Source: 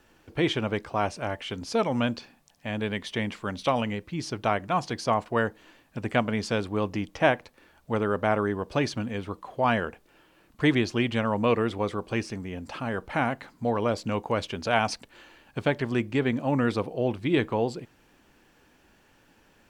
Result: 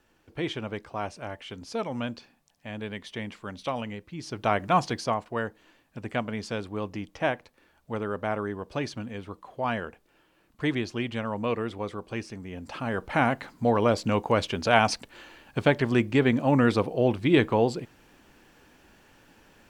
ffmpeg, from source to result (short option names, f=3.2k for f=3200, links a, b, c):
-af "volume=12.5dB,afade=t=in:st=4.22:d=0.53:silence=0.316228,afade=t=out:st=4.75:d=0.44:silence=0.354813,afade=t=in:st=12.36:d=0.98:silence=0.375837"